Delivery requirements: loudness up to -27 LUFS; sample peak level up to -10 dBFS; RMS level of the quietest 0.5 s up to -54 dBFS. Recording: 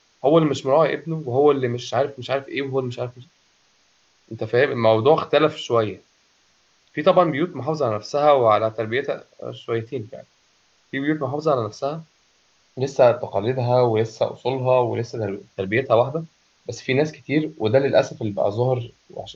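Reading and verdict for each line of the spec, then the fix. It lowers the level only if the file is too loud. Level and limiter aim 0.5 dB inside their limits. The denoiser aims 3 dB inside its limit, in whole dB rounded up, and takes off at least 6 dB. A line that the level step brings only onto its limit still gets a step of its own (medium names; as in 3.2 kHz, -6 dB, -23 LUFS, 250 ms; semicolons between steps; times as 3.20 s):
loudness -21.0 LUFS: fail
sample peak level -4.0 dBFS: fail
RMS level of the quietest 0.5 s -61 dBFS: pass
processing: trim -6.5 dB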